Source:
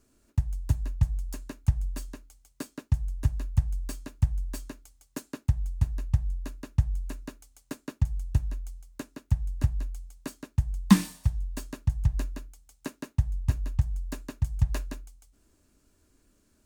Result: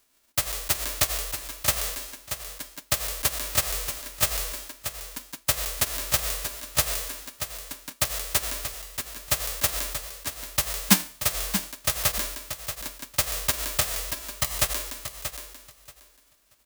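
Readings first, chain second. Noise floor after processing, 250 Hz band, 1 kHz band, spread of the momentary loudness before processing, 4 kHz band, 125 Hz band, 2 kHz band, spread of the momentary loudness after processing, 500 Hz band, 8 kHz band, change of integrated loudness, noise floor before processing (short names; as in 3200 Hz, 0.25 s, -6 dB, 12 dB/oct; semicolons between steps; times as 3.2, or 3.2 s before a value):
-61 dBFS, -5.5 dB, +10.0 dB, 15 LU, +18.0 dB, -10.5 dB, +14.0 dB, 10 LU, +10.5 dB, +19.5 dB, +4.0 dB, -68 dBFS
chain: spectral whitening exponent 0.1; feedback echo 0.632 s, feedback 18%, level -9 dB; gain -1 dB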